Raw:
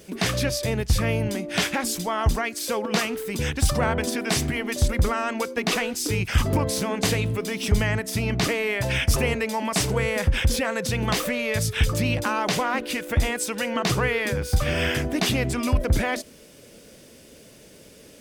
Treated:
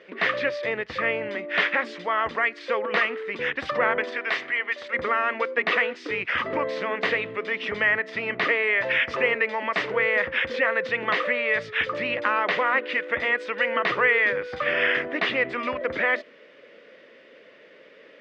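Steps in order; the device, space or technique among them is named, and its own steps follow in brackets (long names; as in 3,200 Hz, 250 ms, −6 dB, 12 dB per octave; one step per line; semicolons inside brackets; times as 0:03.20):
0:04.03–0:04.92: high-pass filter 480 Hz → 1,500 Hz 6 dB per octave
phone earpiece (loudspeaker in its box 420–3,200 Hz, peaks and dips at 520 Hz +5 dB, 790 Hz −5 dB, 1,200 Hz +5 dB, 1,900 Hz +10 dB)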